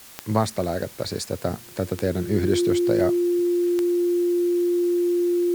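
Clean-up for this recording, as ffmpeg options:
-af "adeclick=t=4,bandreject=f=350:w=30,afftdn=nr=26:nf=-43"

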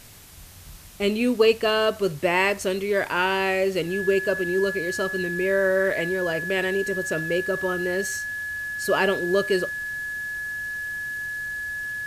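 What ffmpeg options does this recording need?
-af "bandreject=f=1700:w=30,afwtdn=0.0045"

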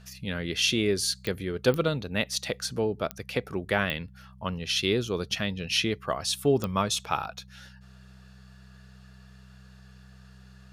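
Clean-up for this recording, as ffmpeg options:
-af "adeclick=t=4,bandreject=f=64:t=h:w=4,bandreject=f=128:t=h:w=4,bandreject=f=192:t=h:w=4"

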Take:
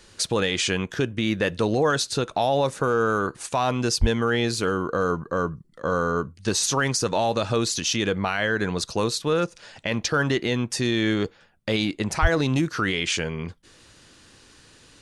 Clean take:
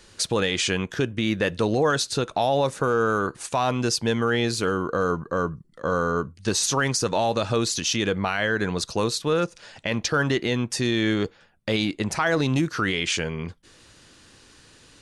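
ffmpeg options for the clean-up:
-filter_complex "[0:a]asplit=3[s0][s1][s2];[s0]afade=t=out:st=4:d=0.02[s3];[s1]highpass=f=140:w=0.5412,highpass=f=140:w=1.3066,afade=t=in:st=4:d=0.02,afade=t=out:st=4.12:d=0.02[s4];[s2]afade=t=in:st=4.12:d=0.02[s5];[s3][s4][s5]amix=inputs=3:normalize=0,asplit=3[s6][s7][s8];[s6]afade=t=out:st=12.21:d=0.02[s9];[s7]highpass=f=140:w=0.5412,highpass=f=140:w=1.3066,afade=t=in:st=12.21:d=0.02,afade=t=out:st=12.33:d=0.02[s10];[s8]afade=t=in:st=12.33:d=0.02[s11];[s9][s10][s11]amix=inputs=3:normalize=0"

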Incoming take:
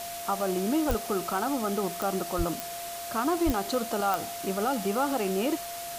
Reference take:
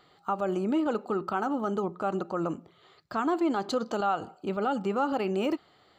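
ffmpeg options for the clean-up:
-filter_complex "[0:a]adeclick=t=4,bandreject=f=690:w=30,asplit=3[s0][s1][s2];[s0]afade=t=out:st=0.88:d=0.02[s3];[s1]highpass=f=140:w=0.5412,highpass=f=140:w=1.3066,afade=t=in:st=0.88:d=0.02,afade=t=out:st=1:d=0.02[s4];[s2]afade=t=in:st=1:d=0.02[s5];[s3][s4][s5]amix=inputs=3:normalize=0,asplit=3[s6][s7][s8];[s6]afade=t=out:st=2.37:d=0.02[s9];[s7]highpass=f=140:w=0.5412,highpass=f=140:w=1.3066,afade=t=in:st=2.37:d=0.02,afade=t=out:st=2.49:d=0.02[s10];[s8]afade=t=in:st=2.49:d=0.02[s11];[s9][s10][s11]amix=inputs=3:normalize=0,asplit=3[s12][s13][s14];[s12]afade=t=out:st=3.45:d=0.02[s15];[s13]highpass=f=140:w=0.5412,highpass=f=140:w=1.3066,afade=t=in:st=3.45:d=0.02,afade=t=out:st=3.57:d=0.02[s16];[s14]afade=t=in:st=3.57:d=0.02[s17];[s15][s16][s17]amix=inputs=3:normalize=0,afftdn=nr=24:nf=-37"

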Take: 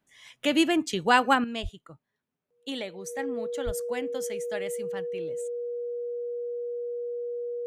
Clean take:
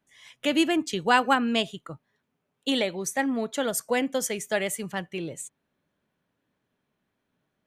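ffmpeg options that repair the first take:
-filter_complex "[0:a]bandreject=f=480:w=30,asplit=3[s0][s1][s2];[s0]afade=t=out:st=1.62:d=0.02[s3];[s1]highpass=f=140:w=0.5412,highpass=f=140:w=1.3066,afade=t=in:st=1.62:d=0.02,afade=t=out:st=1.74:d=0.02[s4];[s2]afade=t=in:st=1.74:d=0.02[s5];[s3][s4][s5]amix=inputs=3:normalize=0,asplit=3[s6][s7][s8];[s6]afade=t=out:st=3.65:d=0.02[s9];[s7]highpass=f=140:w=0.5412,highpass=f=140:w=1.3066,afade=t=in:st=3.65:d=0.02,afade=t=out:st=3.77:d=0.02[s10];[s8]afade=t=in:st=3.77:d=0.02[s11];[s9][s10][s11]amix=inputs=3:normalize=0,asetnsamples=n=441:p=0,asendcmd='1.44 volume volume 9dB',volume=1"

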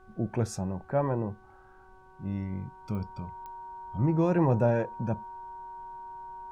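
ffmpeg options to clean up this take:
-af "adeclick=t=4,bandreject=f=376:t=h:w=4,bandreject=f=752:t=h:w=4,bandreject=f=1128:t=h:w=4,bandreject=f=1504:t=h:w=4,bandreject=f=940:w=30,agate=range=0.0891:threshold=0.00501"

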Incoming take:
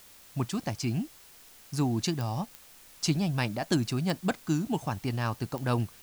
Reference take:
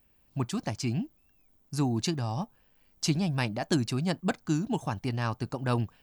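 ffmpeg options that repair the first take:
-af "adeclick=t=4,afwtdn=0.002"

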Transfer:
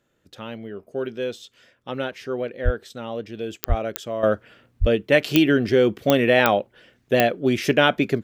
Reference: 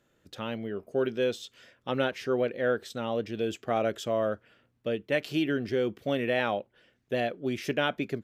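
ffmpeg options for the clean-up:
-filter_complex "[0:a]adeclick=t=4,asplit=3[s0][s1][s2];[s0]afade=t=out:st=2.64:d=0.02[s3];[s1]highpass=f=140:w=0.5412,highpass=f=140:w=1.3066,afade=t=in:st=2.64:d=0.02,afade=t=out:st=2.76:d=0.02[s4];[s2]afade=t=in:st=2.76:d=0.02[s5];[s3][s4][s5]amix=inputs=3:normalize=0,asplit=3[s6][s7][s8];[s6]afade=t=out:st=3.68:d=0.02[s9];[s7]highpass=f=140:w=0.5412,highpass=f=140:w=1.3066,afade=t=in:st=3.68:d=0.02,afade=t=out:st=3.8:d=0.02[s10];[s8]afade=t=in:st=3.8:d=0.02[s11];[s9][s10][s11]amix=inputs=3:normalize=0,asplit=3[s12][s13][s14];[s12]afade=t=out:st=4.8:d=0.02[s15];[s13]highpass=f=140:w=0.5412,highpass=f=140:w=1.3066,afade=t=in:st=4.8:d=0.02,afade=t=out:st=4.92:d=0.02[s16];[s14]afade=t=in:st=4.92:d=0.02[s17];[s15][s16][s17]amix=inputs=3:normalize=0,asetnsamples=n=441:p=0,asendcmd='4.23 volume volume -10.5dB',volume=1"

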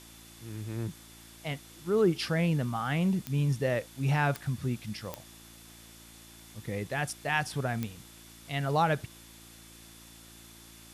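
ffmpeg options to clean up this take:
-af "adeclick=t=4,bandreject=f=56.5:t=h:w=4,bandreject=f=113:t=h:w=4,bandreject=f=169.5:t=h:w=4,bandreject=f=226:t=h:w=4,bandreject=f=282.5:t=h:w=4,bandreject=f=339:t=h:w=4,bandreject=f=3500:w=30,afwtdn=0.0025"

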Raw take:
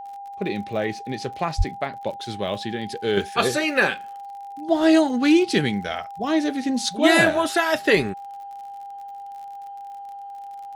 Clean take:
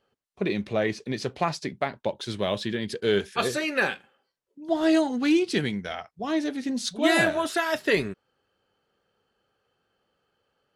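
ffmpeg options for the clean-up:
-filter_complex "[0:a]adeclick=t=4,bandreject=f=800:w=30,asplit=3[s0][s1][s2];[s0]afade=t=out:st=1.57:d=0.02[s3];[s1]highpass=f=140:w=0.5412,highpass=f=140:w=1.3066,afade=t=in:st=1.57:d=0.02,afade=t=out:st=1.69:d=0.02[s4];[s2]afade=t=in:st=1.69:d=0.02[s5];[s3][s4][s5]amix=inputs=3:normalize=0,asetnsamples=n=441:p=0,asendcmd='3.17 volume volume -5dB',volume=1"

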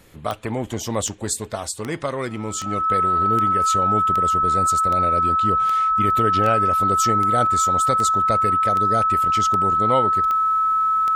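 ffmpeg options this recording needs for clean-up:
-af "adeclick=t=4,bandreject=f=1300:w=30"

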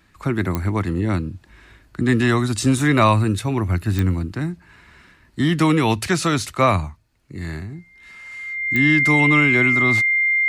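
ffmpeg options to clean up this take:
-af "adeclick=t=4,bandreject=f=2100:w=30"

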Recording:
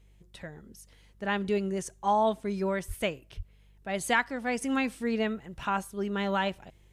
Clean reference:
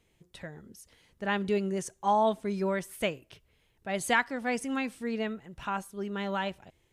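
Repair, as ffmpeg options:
-filter_complex "[0:a]bandreject=f=49.6:t=h:w=4,bandreject=f=99.2:t=h:w=4,bandreject=f=148.8:t=h:w=4,bandreject=f=198.4:t=h:w=4,asplit=3[s0][s1][s2];[s0]afade=t=out:st=2.87:d=0.02[s3];[s1]highpass=f=140:w=0.5412,highpass=f=140:w=1.3066,afade=t=in:st=2.87:d=0.02,afade=t=out:st=2.99:d=0.02[s4];[s2]afade=t=in:st=2.99:d=0.02[s5];[s3][s4][s5]amix=inputs=3:normalize=0,asplit=3[s6][s7][s8];[s6]afade=t=out:st=3.36:d=0.02[s9];[s7]highpass=f=140:w=0.5412,highpass=f=140:w=1.3066,afade=t=in:st=3.36:d=0.02,afade=t=out:st=3.48:d=0.02[s10];[s8]afade=t=in:st=3.48:d=0.02[s11];[s9][s10][s11]amix=inputs=3:normalize=0,asetnsamples=n=441:p=0,asendcmd='4.62 volume volume -3.5dB',volume=1"

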